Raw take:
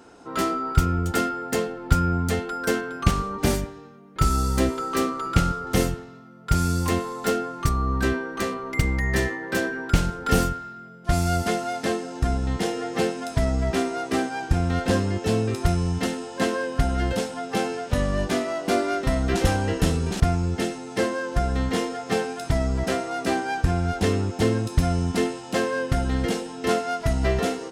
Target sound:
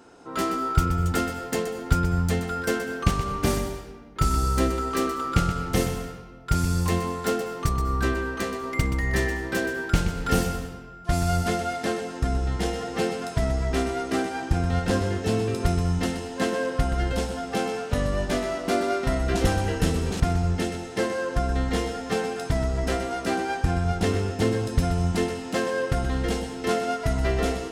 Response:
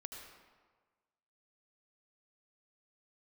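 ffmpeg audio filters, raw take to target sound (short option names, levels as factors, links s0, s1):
-filter_complex "[0:a]asplit=2[s0][s1];[1:a]atrim=start_sample=2205,asetrate=48510,aresample=44100,adelay=125[s2];[s1][s2]afir=irnorm=-1:irlink=0,volume=0.708[s3];[s0][s3]amix=inputs=2:normalize=0,volume=0.794"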